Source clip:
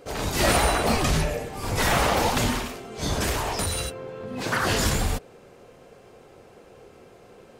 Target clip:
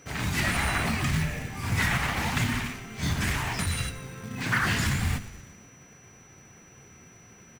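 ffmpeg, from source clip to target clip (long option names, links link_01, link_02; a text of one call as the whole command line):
ffmpeg -i in.wav -filter_complex "[0:a]highpass=100,bass=frequency=250:gain=12,treble=frequency=4000:gain=-4,bandreject=frequency=50:width_type=h:width=6,bandreject=frequency=100:width_type=h:width=6,bandreject=frequency=150:width_type=h:width=6,bandreject=frequency=200:width_type=h:width=6,bandreject=frequency=250:width_type=h:width=6,bandreject=frequency=300:width_type=h:width=6,bandreject=frequency=350:width_type=h:width=6,alimiter=limit=-13dB:level=0:latency=1:release=210,asplit=7[link_01][link_02][link_03][link_04][link_05][link_06][link_07];[link_02]adelay=118,afreqshift=-70,volume=-16dB[link_08];[link_03]adelay=236,afreqshift=-140,volume=-20.7dB[link_09];[link_04]adelay=354,afreqshift=-210,volume=-25.5dB[link_10];[link_05]adelay=472,afreqshift=-280,volume=-30.2dB[link_11];[link_06]adelay=590,afreqshift=-350,volume=-34.9dB[link_12];[link_07]adelay=708,afreqshift=-420,volume=-39.7dB[link_13];[link_01][link_08][link_09][link_10][link_11][link_12][link_13]amix=inputs=7:normalize=0,acrusher=bits=5:mode=log:mix=0:aa=0.000001,aeval=exprs='val(0)+0.00224*sin(2*PI*5900*n/s)':channel_layout=same,equalizer=frequency=500:width_type=o:width=1:gain=-11,equalizer=frequency=2000:width_type=o:width=1:gain=9,equalizer=frequency=8000:width_type=o:width=1:gain=3,volume=-4dB" out.wav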